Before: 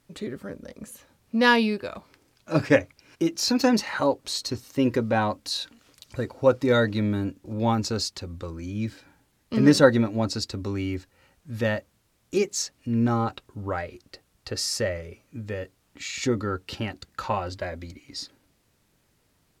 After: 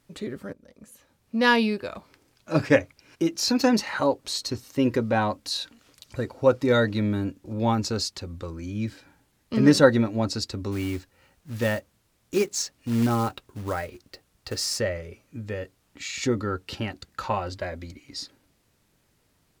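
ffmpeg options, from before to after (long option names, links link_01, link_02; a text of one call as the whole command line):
ffmpeg -i in.wav -filter_complex "[0:a]asplit=3[link_01][link_02][link_03];[link_01]afade=type=out:start_time=10.71:duration=0.02[link_04];[link_02]acrusher=bits=4:mode=log:mix=0:aa=0.000001,afade=type=in:start_time=10.71:duration=0.02,afade=type=out:start_time=14.78:duration=0.02[link_05];[link_03]afade=type=in:start_time=14.78:duration=0.02[link_06];[link_04][link_05][link_06]amix=inputs=3:normalize=0,asplit=2[link_07][link_08];[link_07]atrim=end=0.53,asetpts=PTS-STARTPTS,afade=type=out:start_time=0.526:duration=0.004:curve=hsin:silence=0.158489[link_09];[link_08]atrim=start=0.53,asetpts=PTS-STARTPTS,afade=type=in:duration=1.1:silence=0.158489[link_10];[link_09][link_10]concat=n=2:v=0:a=1" out.wav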